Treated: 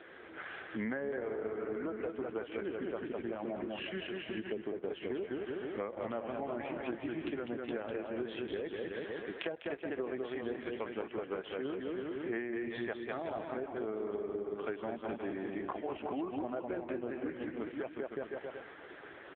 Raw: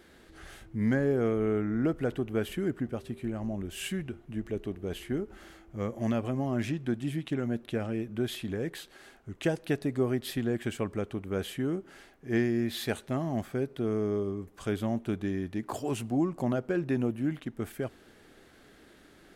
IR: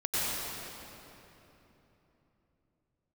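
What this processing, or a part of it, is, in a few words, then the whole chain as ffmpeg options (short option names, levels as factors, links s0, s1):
voicemail: -filter_complex "[0:a]asettb=1/sr,asplit=3[s0][s1][s2];[s0]atrim=end=4.844[s3];[s1]atrim=start=4.84:end=6.27,asetpts=PTS-STARTPTS,afade=t=in:d=0.004:c=qsin,afade=t=out:st=1.426:d=0.004:c=qsin,asubboost=boost=2.5:cutoff=67[s4];[s2]atrim=start=6.266[s5];[s3][s4]acrossfade=d=0.004:c1=hsin:c2=qsin[s6];[s6][s5]acrossfade=d=0.004:c1=qsin:c2=hsin,highpass=450,lowpass=2600,aecho=1:1:200|370|514.5|637.3|741.7:0.631|0.398|0.251|0.158|0.1,acompressor=threshold=0.00562:ratio=10,volume=3.76" -ar 8000 -c:a libopencore_amrnb -b:a 5900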